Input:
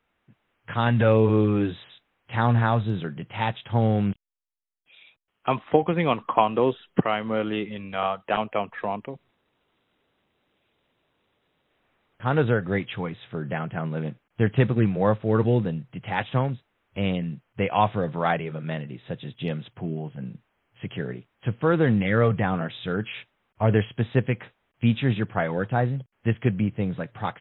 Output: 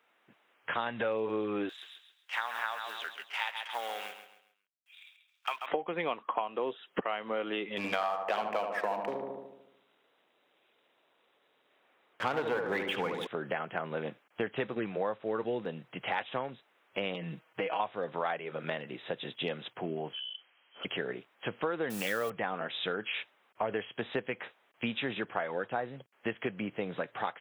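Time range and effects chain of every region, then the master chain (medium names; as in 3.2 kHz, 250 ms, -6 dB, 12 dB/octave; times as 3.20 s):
1.69–5.66 s: companding laws mixed up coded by A + high-pass 1.4 kHz + feedback delay 135 ms, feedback 35%, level -9.5 dB
7.77–13.27 s: waveshaping leveller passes 2 + peaking EQ 84 Hz +6 dB 0.25 oct + filtered feedback delay 74 ms, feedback 59%, low-pass 1.5 kHz, level -5 dB
17.14–17.80 s: compression 4:1, threshold -27 dBFS + comb 6.3 ms, depth 77%
20.13–20.85 s: frequency inversion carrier 3.2 kHz + compression, threshold -43 dBFS
21.90–22.30 s: send-on-delta sampling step -38.5 dBFS + treble shelf 2.8 kHz +9.5 dB + band-stop 2.1 kHz, Q 8.6
whole clip: high-pass 410 Hz 12 dB/octave; compression 5:1, threshold -36 dBFS; trim +5 dB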